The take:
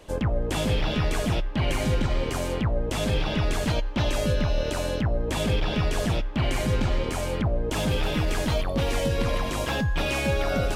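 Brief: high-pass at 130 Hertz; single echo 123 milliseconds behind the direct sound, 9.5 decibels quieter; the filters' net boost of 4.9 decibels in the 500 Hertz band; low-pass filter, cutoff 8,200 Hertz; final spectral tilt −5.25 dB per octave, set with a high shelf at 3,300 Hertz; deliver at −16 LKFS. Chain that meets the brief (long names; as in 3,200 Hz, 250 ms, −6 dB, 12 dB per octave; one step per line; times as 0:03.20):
high-pass filter 130 Hz
low-pass filter 8,200 Hz
parametric band 500 Hz +6 dB
high-shelf EQ 3,300 Hz −8 dB
single-tap delay 123 ms −9.5 dB
level +10 dB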